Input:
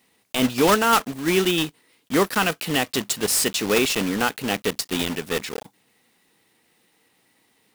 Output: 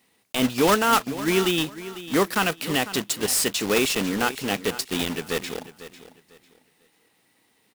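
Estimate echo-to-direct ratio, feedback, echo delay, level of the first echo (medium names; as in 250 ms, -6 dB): -14.5 dB, 26%, 498 ms, -15.0 dB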